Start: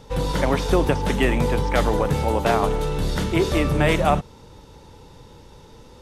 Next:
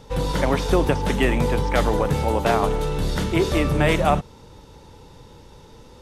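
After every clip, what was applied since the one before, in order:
no processing that can be heard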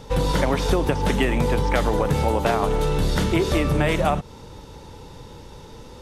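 downward compressor, threshold −21 dBFS, peak gain reduction 8.5 dB
level +4.5 dB

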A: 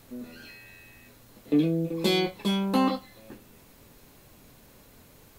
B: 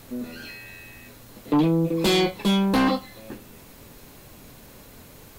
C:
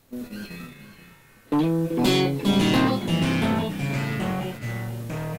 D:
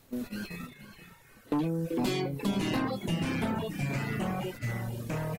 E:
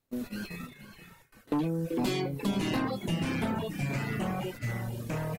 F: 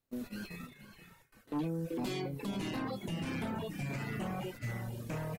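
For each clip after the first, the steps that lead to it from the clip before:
sine wavefolder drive 8 dB, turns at −11 dBFS; level −4.5 dB
delay with pitch and tempo change per echo 165 ms, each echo −3 semitones, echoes 3; noise gate −34 dBFS, range −11 dB; single-tap delay 480 ms −12.5 dB; level −2 dB
reverb reduction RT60 0.85 s; downward compressor 3 to 1, threshold −29 dBFS, peak gain reduction 9.5 dB; dynamic equaliser 3,500 Hz, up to −5 dB, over −53 dBFS, Q 3.1
noise gate with hold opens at −45 dBFS
brickwall limiter −24.5 dBFS, peak gain reduction 6.5 dB; level −5 dB

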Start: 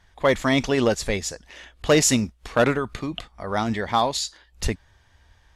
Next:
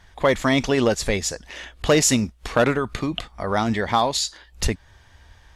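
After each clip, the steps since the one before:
downward compressor 1.5 to 1, threshold −31 dBFS, peak gain reduction 6.5 dB
level +6.5 dB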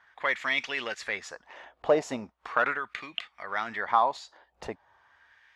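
LFO wah 0.39 Hz 710–2,300 Hz, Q 2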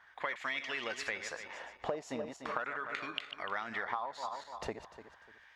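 feedback delay that plays each chunk backwards 148 ms, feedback 52%, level −11 dB
downward compressor 16 to 1, threshold −33 dBFS, peak gain reduction 17.5 dB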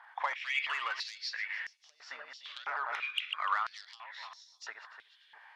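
hearing-aid frequency compression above 3,200 Hz 1.5 to 1
soft clipping −30 dBFS, distortion −14 dB
high-pass on a step sequencer 3 Hz 840–5,900 Hz
level +1 dB

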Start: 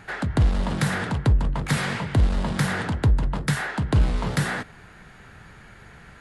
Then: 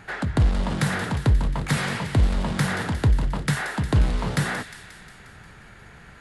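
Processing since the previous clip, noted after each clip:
delay with a high-pass on its return 178 ms, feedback 63%, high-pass 2,200 Hz, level −9.5 dB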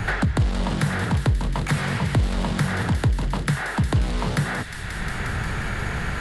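multiband upward and downward compressor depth 100%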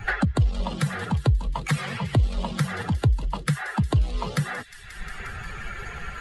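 spectral dynamics exaggerated over time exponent 2
level +2.5 dB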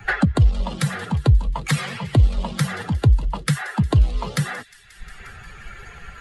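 multiband upward and downward expander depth 70%
level +3.5 dB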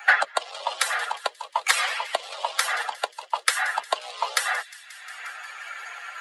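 Butterworth high-pass 610 Hz 36 dB per octave
level +5 dB

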